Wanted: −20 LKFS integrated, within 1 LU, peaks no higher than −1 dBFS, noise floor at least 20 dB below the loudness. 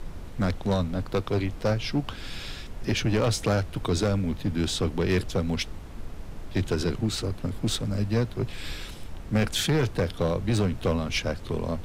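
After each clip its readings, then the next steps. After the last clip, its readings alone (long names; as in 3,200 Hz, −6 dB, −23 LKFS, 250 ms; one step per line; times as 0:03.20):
share of clipped samples 1.7%; peaks flattened at −18.0 dBFS; background noise floor −39 dBFS; target noise floor −48 dBFS; integrated loudness −27.5 LKFS; sample peak −18.0 dBFS; target loudness −20.0 LKFS
→ clipped peaks rebuilt −18 dBFS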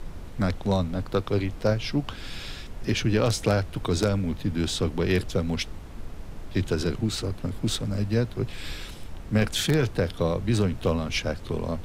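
share of clipped samples 0.0%; background noise floor −39 dBFS; target noise floor −47 dBFS
→ noise reduction from a noise print 8 dB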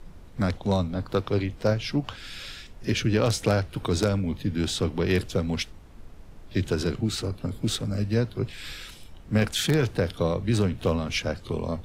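background noise floor −46 dBFS; target noise floor −47 dBFS
→ noise reduction from a noise print 6 dB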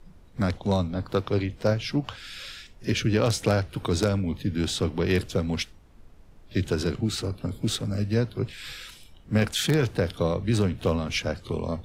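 background noise floor −51 dBFS; integrated loudness −27.0 LKFS; sample peak −9.0 dBFS; target loudness −20.0 LKFS
→ level +7 dB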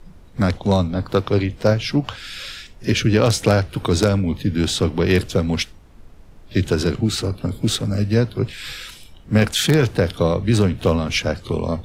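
integrated loudness −20.0 LKFS; sample peak −2.0 dBFS; background noise floor −44 dBFS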